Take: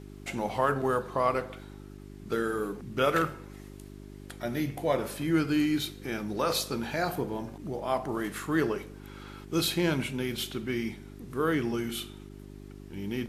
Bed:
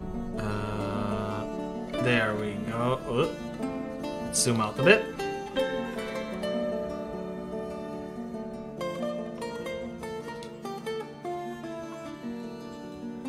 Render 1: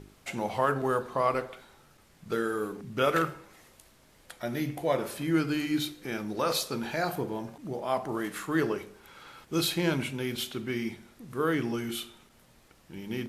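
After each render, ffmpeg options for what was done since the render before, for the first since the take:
-af "bandreject=f=50:t=h:w=4,bandreject=f=100:t=h:w=4,bandreject=f=150:t=h:w=4,bandreject=f=200:t=h:w=4,bandreject=f=250:t=h:w=4,bandreject=f=300:t=h:w=4,bandreject=f=350:t=h:w=4,bandreject=f=400:t=h:w=4"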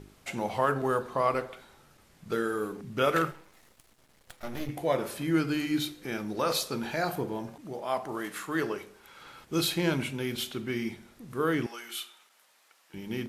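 -filter_complex "[0:a]asettb=1/sr,asplit=3[a][b][c];[a]atrim=end=3.314[d];[b]atrim=start=3.31:end=4.69,asetpts=PTS-STARTPTS,afade=t=in:d=0.004:c=qsin,afade=t=out:st=1.376:d=0.004:c=qsin,aeval=exprs='max(val(0),0)':c=same[e];[c]atrim=start=4.686[f];[d][e]acrossfade=d=0.004:c1=hsin:c2=qsin[g];[g][f]acrossfade=d=0.004:c1=qsin:c2=hsin,asettb=1/sr,asplit=3[h][i][j];[h]atrim=end=7.614[k];[i]atrim=start=7.61:end=9.21,asetpts=PTS-STARTPTS,afade=t=in:d=0.004:c=qsin,afade=t=out:st=1.596:d=0.004:c=qsin,lowshelf=f=360:g=-6.5[l];[j]atrim=start=9.206[m];[k][l]acrossfade=d=0.004:c1=hsin:c2=qsin[n];[n][m]acrossfade=d=0.004:c1=qsin:c2=hsin,asettb=1/sr,asplit=3[o][p][q];[o]atrim=end=11.664[r];[p]atrim=start=11.66:end=12.94,asetpts=PTS-STARTPTS,afade=t=in:d=0.004:c=qsin,afade=t=out:st=1.276:d=0.004:c=qsin,highpass=860[s];[q]atrim=start=12.936[t];[r][s]acrossfade=d=0.004:c1=hsin:c2=qsin[u];[u][t]acrossfade=d=0.004:c1=qsin:c2=hsin"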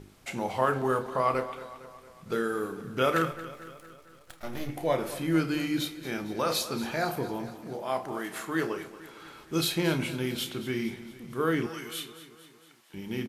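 -filter_complex "[0:a]asplit=2[a][b];[b]adelay=31,volume=-11dB[c];[a][c]amix=inputs=2:normalize=0,aecho=1:1:228|456|684|912|1140:0.178|0.0996|0.0558|0.0312|0.0175"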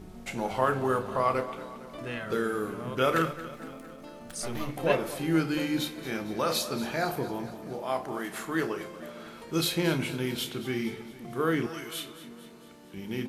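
-filter_complex "[1:a]volume=-12dB[a];[0:a][a]amix=inputs=2:normalize=0"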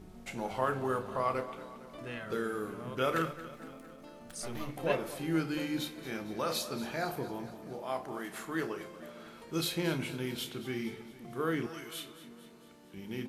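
-af "volume=-5.5dB"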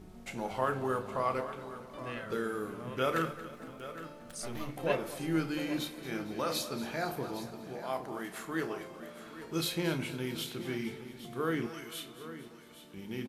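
-af "aecho=1:1:814:0.211"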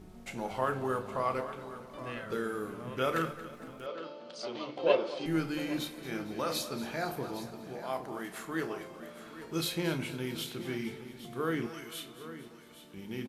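-filter_complex "[0:a]asettb=1/sr,asplit=3[a][b][c];[a]atrim=end=3.864[d];[b]atrim=start=3.86:end=5.26,asetpts=PTS-STARTPTS,afade=t=in:d=0.004:c=qsin,afade=t=out:st=1.396:d=0.004:c=qsin,highpass=250,equalizer=f=370:t=q:w=4:g=5,equalizer=f=540:t=q:w=4:g=8,equalizer=f=980:t=q:w=4:g=4,equalizer=f=1.8k:t=q:w=4:g=-6,equalizer=f=3.1k:t=q:w=4:g=7,equalizer=f=4.5k:t=q:w=4:g=7,lowpass=f=5.4k:w=0.5412,lowpass=f=5.4k:w=1.3066[e];[c]atrim=start=5.256[f];[d][e]acrossfade=d=0.004:c1=hsin:c2=qsin[g];[g][f]acrossfade=d=0.004:c1=qsin:c2=hsin"

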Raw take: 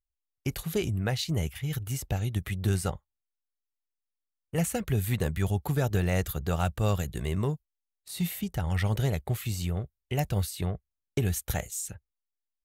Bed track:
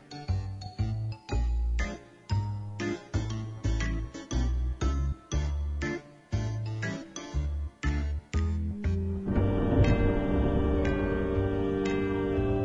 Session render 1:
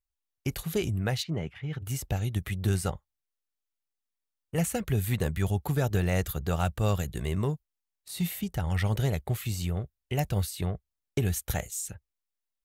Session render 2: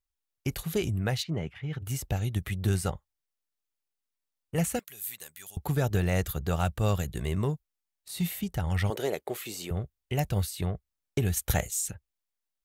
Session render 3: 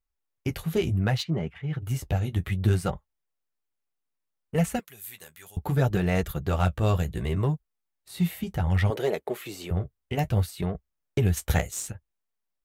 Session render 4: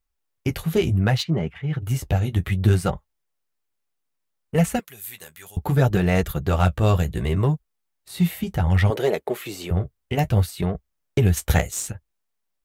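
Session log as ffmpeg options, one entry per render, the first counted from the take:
-filter_complex "[0:a]asplit=3[a][b][c];[a]afade=t=out:st=1.22:d=0.02[d];[b]highpass=140,lowpass=2.3k,afade=t=in:st=1.22:d=0.02,afade=t=out:st=1.81:d=0.02[e];[c]afade=t=in:st=1.81:d=0.02[f];[d][e][f]amix=inputs=3:normalize=0"
-filter_complex "[0:a]asettb=1/sr,asplit=3[a][b][c];[a]atrim=end=4.794[d];[b]atrim=start=4.79:end=5.57,asetpts=PTS-STARTPTS,afade=t=in:d=0.004:c=qsin,afade=t=out:st=0.776:d=0.004:c=qsin,aderivative[e];[c]atrim=start=5.566[f];[d][e]acrossfade=d=0.004:c1=hsin:c2=qsin[g];[g][f]acrossfade=d=0.004:c1=qsin:c2=hsin,asettb=1/sr,asplit=3[h][i][j];[h]atrim=end=8.904[k];[i]atrim=start=8.9:end=9.71,asetpts=PTS-STARTPTS,afade=t=in:d=0.004:c=qsin,afade=t=out:st=0.806:d=0.004:c=qsin,highpass=f=380:t=q:w=1.9[l];[j]atrim=start=9.706[m];[k][l]acrossfade=d=0.004:c1=hsin:c2=qsin[n];[n][m]acrossfade=d=0.004:c1=qsin:c2=hsin,asplit=3[o][p][q];[o]atrim=end=11.372[r];[p]atrim=start=11.368:end=11.912,asetpts=PTS-STARTPTS,volume=4dB[s];[q]atrim=start=11.908[t];[r][s]acrossfade=d=0.004:c1=hsin:c2=hsin[u];[u][t]acrossfade=d=0.004:c1=hsin:c2=hsin"
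-filter_complex "[0:a]asplit=2[a][b];[b]adynamicsmooth=sensitivity=6:basefreq=2.8k,volume=2dB[c];[a][c]amix=inputs=2:normalize=0,flanger=delay=4.4:depth=8.2:regen=-31:speed=0.65:shape=sinusoidal"
-af "volume=5dB"

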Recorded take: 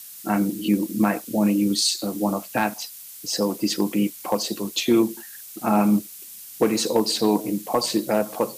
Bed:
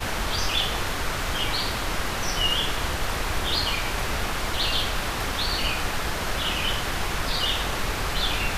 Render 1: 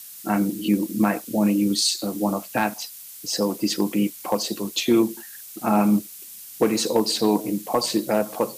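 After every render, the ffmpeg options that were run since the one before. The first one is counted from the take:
-af anull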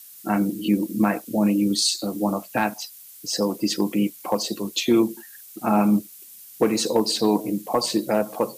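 -af "afftdn=nr=6:nf=-41"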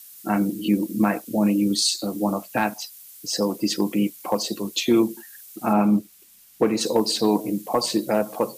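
-filter_complex "[0:a]asettb=1/sr,asplit=3[a][b][c];[a]atrim=end=5.734[d];[b]atrim=start=5.73:end=6.81,asetpts=PTS-STARTPTS,afade=t=in:d=0.004:c=qsin,afade=t=out:st=1.076:d=0.004:c=qsin,highshelf=f=4.7k:g=-9[e];[c]atrim=start=6.806[f];[d][e]acrossfade=d=0.004:c1=hsin:c2=qsin[g];[g][f]acrossfade=d=0.004:c1=qsin:c2=hsin"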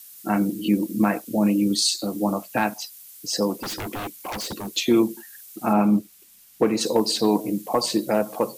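-filter_complex "[0:a]asettb=1/sr,asplit=3[a][b][c];[a]atrim=end=3.554[d];[b]atrim=start=3.55:end=4.77,asetpts=PTS-STARTPTS,afade=t=in:d=0.004:c=qsin,afade=t=out:st=1.216:d=0.004:c=qsin,aeval=exprs='0.0531*(abs(mod(val(0)/0.0531+3,4)-2)-1)':c=same[e];[c]atrim=start=4.766[f];[d][e]acrossfade=d=0.004:c1=hsin:c2=qsin[g];[g][f]acrossfade=d=0.004:c1=qsin:c2=hsin"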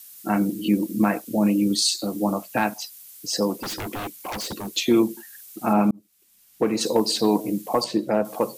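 -filter_complex "[0:a]asettb=1/sr,asplit=3[a][b][c];[a]atrim=end=7.844[d];[b]atrim=start=7.84:end=8.25,asetpts=PTS-STARTPTS,afade=t=in:d=0.004:c=qsin,afade=t=out:st=0.406:d=0.004:c=qsin,lowpass=f=2.1k:p=1[e];[c]atrim=start=8.246[f];[d][e]acrossfade=d=0.004:c1=hsin:c2=qsin[g];[g][f]acrossfade=d=0.004:c1=qsin:c2=hsin,asplit=2[h][i];[h]atrim=end=5.91,asetpts=PTS-STARTPTS,afade=t=out:st=5.906:d=0.004:c=hsin[j];[i]atrim=start=5.91,asetpts=PTS-STARTPTS,afade=t=in:d=0.93[k];[j][k]concat=n=2:v=0:a=1"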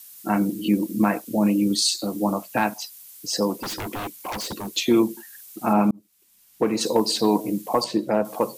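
-af "equalizer=f=980:t=o:w=0.25:g=3.5"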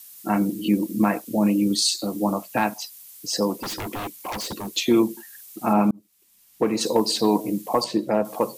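-af "bandreject=f=1.5k:w=20"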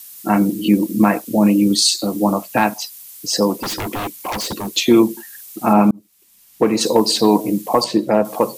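-af "volume=6.5dB,alimiter=limit=-3dB:level=0:latency=1"

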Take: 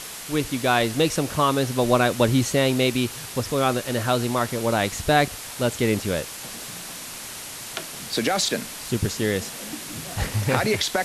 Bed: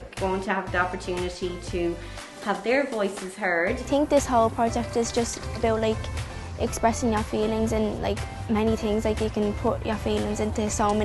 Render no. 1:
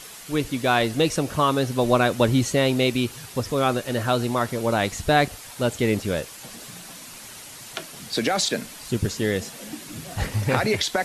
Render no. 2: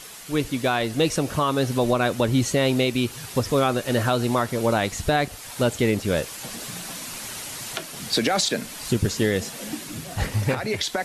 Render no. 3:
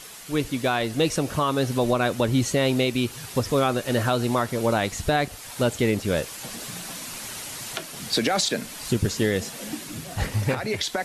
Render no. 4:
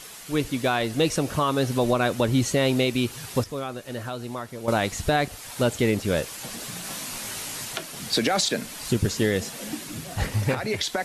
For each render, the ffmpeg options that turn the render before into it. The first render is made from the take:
-af "afftdn=nr=7:nf=-37"
-af "dynaudnorm=f=630:g=3:m=7dB,alimiter=limit=-11dB:level=0:latency=1:release=413"
-af "volume=-1dB"
-filter_complex "[0:a]asettb=1/sr,asplit=3[a][b][c];[a]atrim=end=6.824[d];[b]atrim=start=6.82:end=7.65,asetpts=PTS-STARTPTS,afade=t=in:d=0.004:c=qsin,afade=t=out:st=0.826:d=0.004:c=qsin,asplit=2[e][f];[f]adelay=20,volume=-3dB[g];[e][g]amix=inputs=2:normalize=0,atrim=end_sample=36603[h];[c]atrim=start=7.646[i];[d][h]acrossfade=d=0.004:c1=hsin:c2=qsin[j];[j][i]acrossfade=d=0.004:c1=qsin:c2=hsin,asplit=3[k][l][m];[k]atrim=end=3.442[n];[l]atrim=start=3.438:end=4.682,asetpts=PTS-STARTPTS,volume=-10dB[o];[m]atrim=start=4.678[p];[n][o]acrossfade=d=0.004:c1=hsin:c2=hsin[q];[q][p]acrossfade=d=0.004:c1=hsin:c2=hsin"

